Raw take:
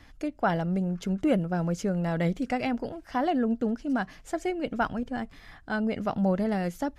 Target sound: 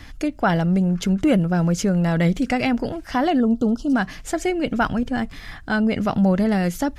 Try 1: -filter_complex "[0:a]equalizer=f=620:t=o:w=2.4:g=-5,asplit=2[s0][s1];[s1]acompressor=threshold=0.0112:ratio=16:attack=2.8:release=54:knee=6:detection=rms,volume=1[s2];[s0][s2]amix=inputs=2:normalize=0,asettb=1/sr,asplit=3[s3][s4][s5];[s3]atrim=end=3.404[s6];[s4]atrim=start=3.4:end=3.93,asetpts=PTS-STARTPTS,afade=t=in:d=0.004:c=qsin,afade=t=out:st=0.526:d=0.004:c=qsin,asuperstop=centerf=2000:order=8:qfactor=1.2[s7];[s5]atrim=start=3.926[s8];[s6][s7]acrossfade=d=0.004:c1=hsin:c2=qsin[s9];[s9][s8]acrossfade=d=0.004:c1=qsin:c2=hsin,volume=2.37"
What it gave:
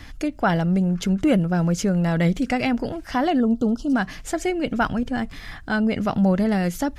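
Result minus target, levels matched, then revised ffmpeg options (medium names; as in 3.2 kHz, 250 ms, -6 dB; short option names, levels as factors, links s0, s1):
compression: peak gain reduction +5.5 dB
-filter_complex "[0:a]equalizer=f=620:t=o:w=2.4:g=-5,asplit=2[s0][s1];[s1]acompressor=threshold=0.0224:ratio=16:attack=2.8:release=54:knee=6:detection=rms,volume=1[s2];[s0][s2]amix=inputs=2:normalize=0,asettb=1/sr,asplit=3[s3][s4][s5];[s3]atrim=end=3.404[s6];[s4]atrim=start=3.4:end=3.93,asetpts=PTS-STARTPTS,afade=t=in:d=0.004:c=qsin,afade=t=out:st=0.526:d=0.004:c=qsin,asuperstop=centerf=2000:order=8:qfactor=1.2[s7];[s5]atrim=start=3.926[s8];[s6][s7]acrossfade=d=0.004:c1=hsin:c2=qsin[s9];[s9][s8]acrossfade=d=0.004:c1=qsin:c2=hsin,volume=2.37"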